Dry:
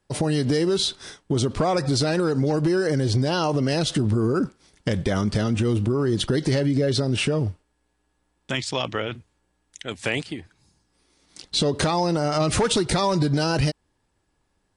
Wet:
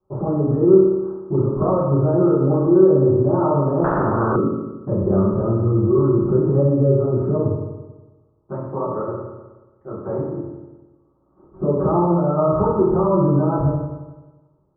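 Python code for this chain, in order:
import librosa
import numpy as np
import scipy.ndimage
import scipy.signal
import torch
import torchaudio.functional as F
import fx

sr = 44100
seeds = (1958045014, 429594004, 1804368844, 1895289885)

y = scipy.signal.sosfilt(scipy.signal.cheby1(6, 1.0, 1300.0, 'lowpass', fs=sr, output='sos'), x)
y = fx.rev_fdn(y, sr, rt60_s=1.2, lf_ratio=1.0, hf_ratio=0.85, size_ms=16.0, drr_db=-10.0)
y = fx.spectral_comp(y, sr, ratio=4.0, at=(3.84, 4.36))
y = F.gain(torch.from_numpy(y), -6.5).numpy()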